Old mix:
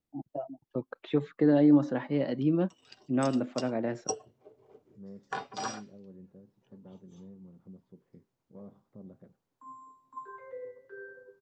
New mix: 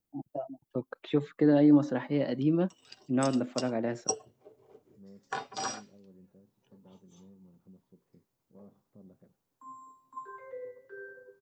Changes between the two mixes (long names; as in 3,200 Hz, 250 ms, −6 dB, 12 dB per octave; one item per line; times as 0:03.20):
second voice −6.0 dB
master: add high-shelf EQ 7,800 Hz +12 dB